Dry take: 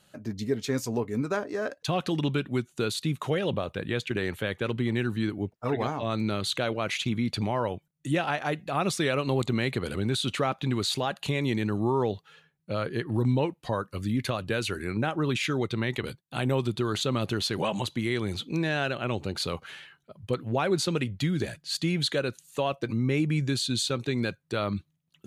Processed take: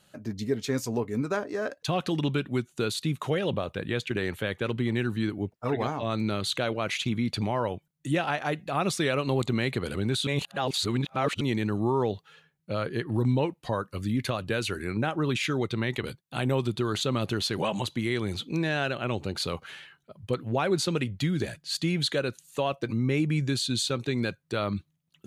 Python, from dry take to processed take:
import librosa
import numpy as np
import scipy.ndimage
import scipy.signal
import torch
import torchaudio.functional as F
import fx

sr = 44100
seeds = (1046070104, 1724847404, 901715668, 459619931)

y = fx.edit(x, sr, fx.reverse_span(start_s=10.27, length_s=1.14), tone=tone)